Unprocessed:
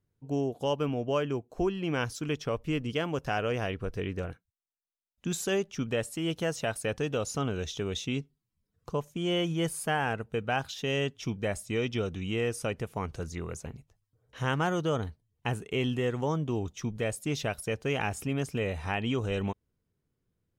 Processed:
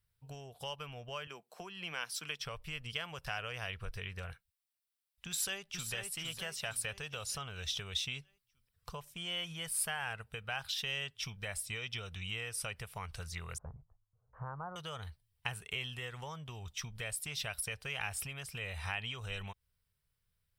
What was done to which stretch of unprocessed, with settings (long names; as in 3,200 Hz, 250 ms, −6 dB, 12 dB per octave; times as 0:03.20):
0:01.27–0:02.40: Butterworth high-pass 160 Hz 48 dB per octave
0:05.28–0:05.92: delay throw 460 ms, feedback 45%, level −5 dB
0:13.58–0:14.76: Butterworth low-pass 1,200 Hz
whole clip: parametric band 6,600 Hz −13 dB 0.22 octaves; downward compressor, threshold −33 dBFS; guitar amp tone stack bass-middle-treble 10-0-10; level +7.5 dB